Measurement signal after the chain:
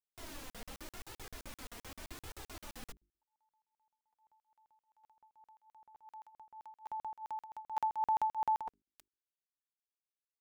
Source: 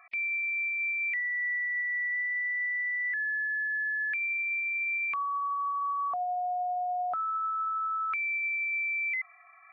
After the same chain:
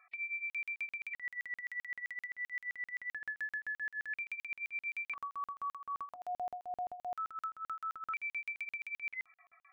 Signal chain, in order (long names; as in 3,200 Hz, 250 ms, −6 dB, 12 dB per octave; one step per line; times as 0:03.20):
mains-hum notches 50/100/150/200/250/300/350/400 Hz
flanger 0.86 Hz, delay 2.1 ms, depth 2.2 ms, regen 0%
regular buffer underruns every 0.13 s, samples 2,048, zero, from 0:00.50
level −5.5 dB